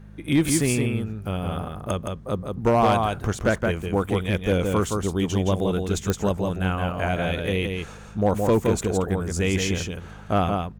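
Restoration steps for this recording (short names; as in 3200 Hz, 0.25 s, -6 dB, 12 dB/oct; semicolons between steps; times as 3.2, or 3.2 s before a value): clip repair -12.5 dBFS; de-click; de-hum 51.3 Hz, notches 4; inverse comb 0.168 s -4.5 dB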